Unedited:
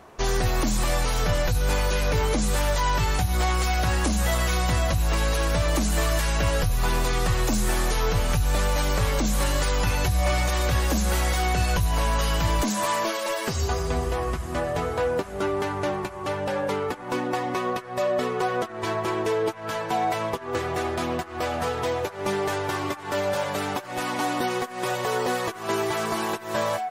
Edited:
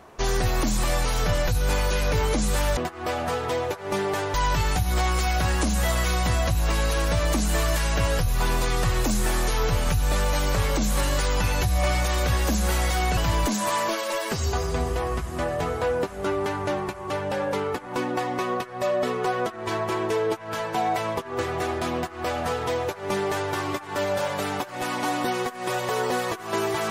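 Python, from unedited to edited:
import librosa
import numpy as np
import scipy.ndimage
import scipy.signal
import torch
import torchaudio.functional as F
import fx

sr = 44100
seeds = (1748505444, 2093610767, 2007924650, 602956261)

y = fx.edit(x, sr, fx.cut(start_s=11.6, length_s=0.73),
    fx.duplicate(start_s=21.11, length_s=1.57, to_s=2.77), tone=tone)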